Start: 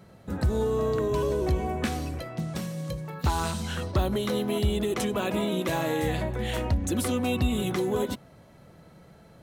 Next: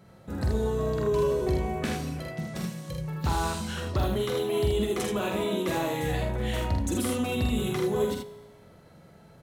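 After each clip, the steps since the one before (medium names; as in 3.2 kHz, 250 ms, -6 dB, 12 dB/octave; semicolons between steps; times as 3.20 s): feedback comb 52 Hz, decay 1.3 s, harmonics all, mix 50%; on a send: early reflections 46 ms -4 dB, 79 ms -4.5 dB; on the sum: trim +2 dB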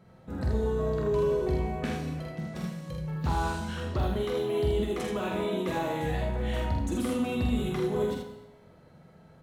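treble shelf 4.2 kHz -9 dB; gated-style reverb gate 290 ms falling, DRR 6 dB; trim -2.5 dB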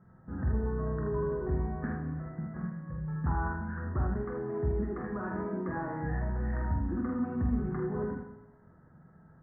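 Chebyshev low-pass 1.8 kHz, order 6; peaking EQ 540 Hz -11 dB 1 oct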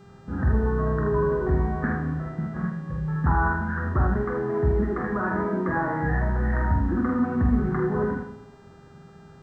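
dynamic bell 1.6 kHz, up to +5 dB, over -51 dBFS, Q 0.72; mains buzz 400 Hz, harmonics 21, -63 dBFS -7 dB/octave; trim +8 dB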